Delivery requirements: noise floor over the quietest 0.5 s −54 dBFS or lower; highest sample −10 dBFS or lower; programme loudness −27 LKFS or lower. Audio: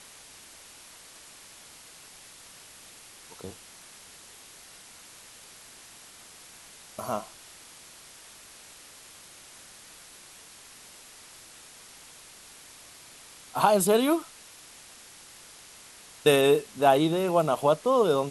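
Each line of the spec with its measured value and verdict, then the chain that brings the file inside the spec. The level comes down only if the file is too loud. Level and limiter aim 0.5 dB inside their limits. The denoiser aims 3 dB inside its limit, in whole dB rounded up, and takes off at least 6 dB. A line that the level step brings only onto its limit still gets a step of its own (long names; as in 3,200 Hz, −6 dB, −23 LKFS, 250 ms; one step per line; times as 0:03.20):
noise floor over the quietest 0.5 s −50 dBFS: out of spec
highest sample −7.0 dBFS: out of spec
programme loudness −24.0 LKFS: out of spec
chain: broadband denoise 6 dB, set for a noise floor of −50 dBFS
level −3.5 dB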